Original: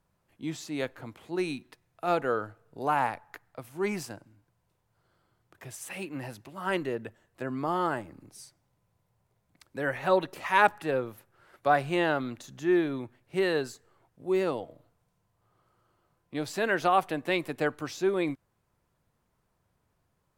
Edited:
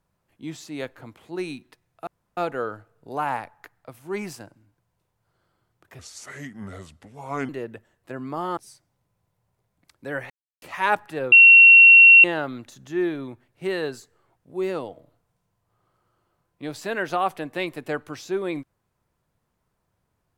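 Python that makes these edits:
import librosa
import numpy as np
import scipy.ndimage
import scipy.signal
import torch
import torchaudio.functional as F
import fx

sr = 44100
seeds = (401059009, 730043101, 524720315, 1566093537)

y = fx.edit(x, sr, fx.insert_room_tone(at_s=2.07, length_s=0.3),
    fx.speed_span(start_s=5.69, length_s=1.11, speed=0.74),
    fx.cut(start_s=7.88, length_s=0.41),
    fx.silence(start_s=10.02, length_s=0.32),
    fx.bleep(start_s=11.04, length_s=0.92, hz=2730.0, db=-6.5), tone=tone)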